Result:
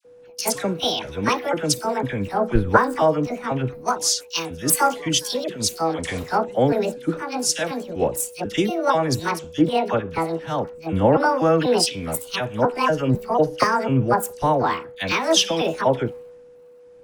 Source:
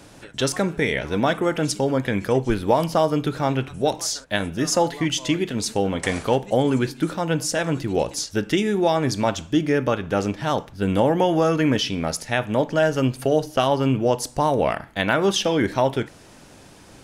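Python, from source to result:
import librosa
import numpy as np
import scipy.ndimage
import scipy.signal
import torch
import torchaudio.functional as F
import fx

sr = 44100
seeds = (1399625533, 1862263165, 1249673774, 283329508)

y = fx.pitch_trill(x, sr, semitones=8.5, every_ms=247)
y = y + 10.0 ** (-30.0 / 20.0) * np.sin(2.0 * np.pi * 490.0 * np.arange(len(y)) / sr)
y = fx.dispersion(y, sr, late='lows', ms=52.0, hz=1300.0)
y = fx.band_widen(y, sr, depth_pct=100)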